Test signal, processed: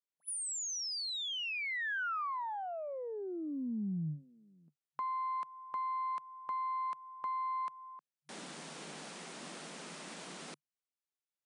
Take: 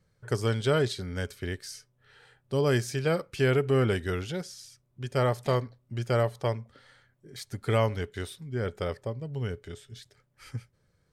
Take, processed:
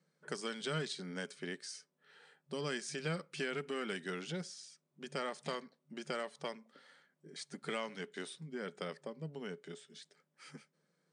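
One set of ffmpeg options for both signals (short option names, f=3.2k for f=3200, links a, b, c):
-filter_complex "[0:a]aeval=exprs='0.224*(cos(1*acos(clip(val(0)/0.224,-1,1)))-cos(1*PI/2))+0.00562*(cos(3*acos(clip(val(0)/0.224,-1,1)))-cos(3*PI/2))+0.00447*(cos(6*acos(clip(val(0)/0.224,-1,1)))-cos(6*PI/2))+0.00631*(cos(8*acos(clip(val(0)/0.224,-1,1)))-cos(8*PI/2))':c=same,acrossover=split=210|1300[a][b][c];[a]acompressor=threshold=-33dB:ratio=4[d];[b]acompressor=threshold=-38dB:ratio=4[e];[c]acompressor=threshold=-34dB:ratio=4[f];[d][e][f]amix=inputs=3:normalize=0,afftfilt=real='re*between(b*sr/4096,140,10000)':imag='im*between(b*sr/4096,140,10000)':win_size=4096:overlap=0.75,volume=-4dB"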